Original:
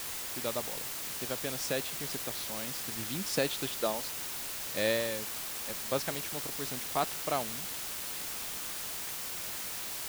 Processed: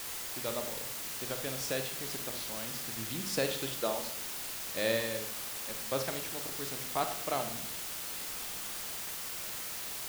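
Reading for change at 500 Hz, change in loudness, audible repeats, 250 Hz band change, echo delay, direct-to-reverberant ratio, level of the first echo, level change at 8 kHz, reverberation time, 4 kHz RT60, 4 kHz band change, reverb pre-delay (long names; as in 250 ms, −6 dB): −1.0 dB, −1.0 dB, no echo audible, −1.5 dB, no echo audible, 6.0 dB, no echo audible, −1.0 dB, 0.65 s, 0.50 s, −1.0 dB, 34 ms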